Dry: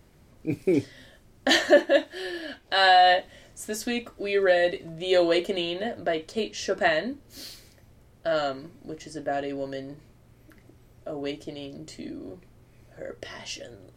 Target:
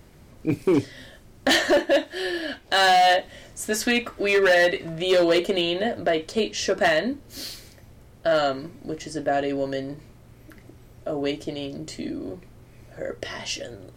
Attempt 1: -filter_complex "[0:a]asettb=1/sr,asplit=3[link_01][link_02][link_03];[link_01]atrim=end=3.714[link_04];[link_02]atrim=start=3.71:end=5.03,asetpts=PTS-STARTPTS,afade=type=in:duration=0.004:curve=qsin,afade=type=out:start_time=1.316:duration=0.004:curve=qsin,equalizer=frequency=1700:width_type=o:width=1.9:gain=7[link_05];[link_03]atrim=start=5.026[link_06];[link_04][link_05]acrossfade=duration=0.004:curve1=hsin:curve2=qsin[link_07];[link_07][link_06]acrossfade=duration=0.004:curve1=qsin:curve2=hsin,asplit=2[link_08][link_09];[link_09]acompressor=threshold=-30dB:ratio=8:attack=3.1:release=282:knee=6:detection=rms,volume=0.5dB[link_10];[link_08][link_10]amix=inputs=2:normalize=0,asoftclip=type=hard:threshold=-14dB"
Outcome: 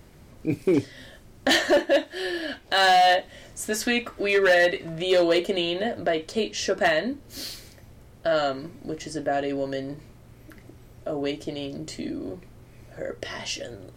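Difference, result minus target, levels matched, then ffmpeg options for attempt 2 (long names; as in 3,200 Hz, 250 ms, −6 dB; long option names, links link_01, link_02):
downward compressor: peak gain reduction +7.5 dB
-filter_complex "[0:a]asettb=1/sr,asplit=3[link_01][link_02][link_03];[link_01]atrim=end=3.714[link_04];[link_02]atrim=start=3.71:end=5.03,asetpts=PTS-STARTPTS,afade=type=in:duration=0.004:curve=qsin,afade=type=out:start_time=1.316:duration=0.004:curve=qsin,equalizer=frequency=1700:width_type=o:width=1.9:gain=7[link_05];[link_03]atrim=start=5.026[link_06];[link_04][link_05]acrossfade=duration=0.004:curve1=hsin:curve2=qsin[link_07];[link_07][link_06]acrossfade=duration=0.004:curve1=qsin:curve2=hsin,asplit=2[link_08][link_09];[link_09]acompressor=threshold=-21.5dB:ratio=8:attack=3.1:release=282:knee=6:detection=rms,volume=0.5dB[link_10];[link_08][link_10]amix=inputs=2:normalize=0,asoftclip=type=hard:threshold=-14dB"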